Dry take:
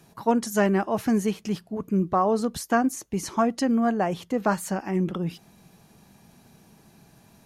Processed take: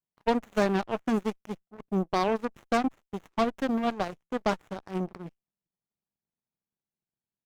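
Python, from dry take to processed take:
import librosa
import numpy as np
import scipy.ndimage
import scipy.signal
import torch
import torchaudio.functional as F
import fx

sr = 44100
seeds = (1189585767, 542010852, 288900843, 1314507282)

y = fx.cheby_harmonics(x, sr, harmonics=(7, 8), levels_db=(-17, -35), full_scale_db=-10.0)
y = fx.running_max(y, sr, window=9)
y = y * librosa.db_to_amplitude(-3.5)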